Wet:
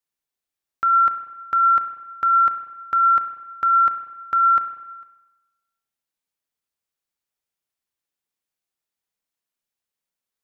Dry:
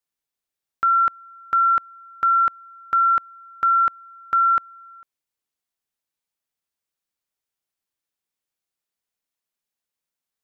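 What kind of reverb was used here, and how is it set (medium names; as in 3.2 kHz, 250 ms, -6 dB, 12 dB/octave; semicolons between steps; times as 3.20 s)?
spring tank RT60 1.1 s, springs 31/49 ms, chirp 65 ms, DRR 8 dB; trim -1 dB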